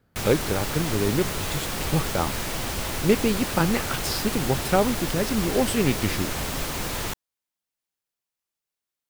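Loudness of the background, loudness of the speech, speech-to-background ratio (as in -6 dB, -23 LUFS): -28.5 LUFS, -26.0 LUFS, 2.5 dB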